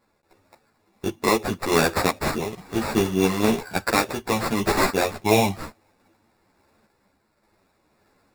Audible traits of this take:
aliases and images of a low sample rate 3,100 Hz, jitter 0%
sample-and-hold tremolo
a shimmering, thickened sound

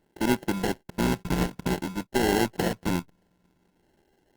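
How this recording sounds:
a buzz of ramps at a fixed pitch in blocks of 32 samples
phaser sweep stages 4, 0.54 Hz, lowest notch 500–1,200 Hz
aliases and images of a low sample rate 1,200 Hz, jitter 0%
Opus

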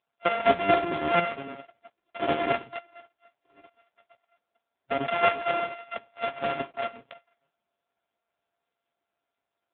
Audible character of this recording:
a buzz of ramps at a fixed pitch in blocks of 64 samples
chopped level 4.4 Hz, depth 60%, duty 25%
AMR narrowband

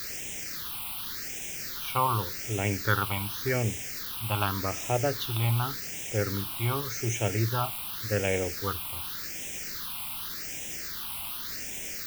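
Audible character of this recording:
a quantiser's noise floor 6 bits, dither triangular
phaser sweep stages 6, 0.87 Hz, lowest notch 460–1,200 Hz

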